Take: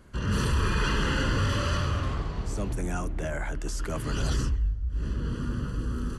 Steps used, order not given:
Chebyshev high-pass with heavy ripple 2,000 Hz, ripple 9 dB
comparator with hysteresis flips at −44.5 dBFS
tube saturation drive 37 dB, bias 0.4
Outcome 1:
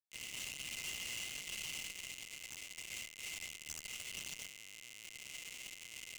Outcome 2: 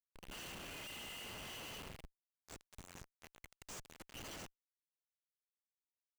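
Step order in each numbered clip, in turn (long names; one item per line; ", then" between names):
comparator with hysteresis, then Chebyshev high-pass with heavy ripple, then tube saturation
Chebyshev high-pass with heavy ripple, then tube saturation, then comparator with hysteresis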